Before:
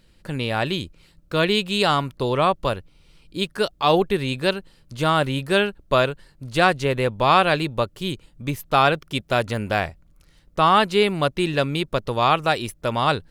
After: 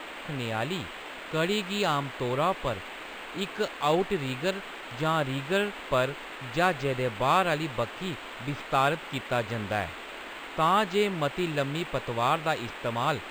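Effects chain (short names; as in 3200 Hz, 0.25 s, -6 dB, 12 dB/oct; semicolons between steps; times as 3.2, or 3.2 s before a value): band noise 240–3200 Hz -33 dBFS; decimation joined by straight lines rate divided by 4×; gain -7 dB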